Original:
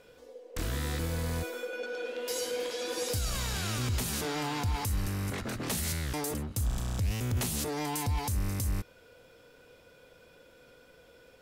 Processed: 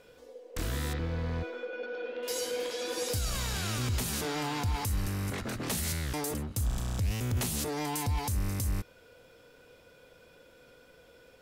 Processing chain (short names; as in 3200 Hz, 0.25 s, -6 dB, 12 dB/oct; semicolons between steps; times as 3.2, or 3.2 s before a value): 0.93–2.23 air absorption 240 m